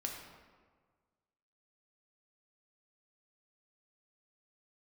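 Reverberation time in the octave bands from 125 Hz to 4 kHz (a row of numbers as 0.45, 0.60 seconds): 1.8, 1.6, 1.6, 1.5, 1.2, 0.90 seconds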